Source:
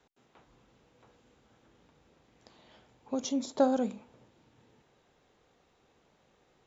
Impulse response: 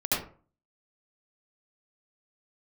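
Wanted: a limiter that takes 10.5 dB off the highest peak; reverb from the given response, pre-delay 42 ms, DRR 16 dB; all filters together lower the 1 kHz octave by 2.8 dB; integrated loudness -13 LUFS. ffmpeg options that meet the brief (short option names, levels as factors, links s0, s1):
-filter_complex "[0:a]equalizer=f=1000:t=o:g=-4,alimiter=level_in=1.19:limit=0.0631:level=0:latency=1,volume=0.841,asplit=2[s0][s1];[1:a]atrim=start_sample=2205,adelay=42[s2];[s1][s2]afir=irnorm=-1:irlink=0,volume=0.0501[s3];[s0][s3]amix=inputs=2:normalize=0,volume=13.3"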